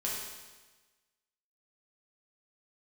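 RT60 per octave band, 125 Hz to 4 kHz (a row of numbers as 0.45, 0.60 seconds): 1.3, 1.3, 1.3, 1.3, 1.3, 1.2 seconds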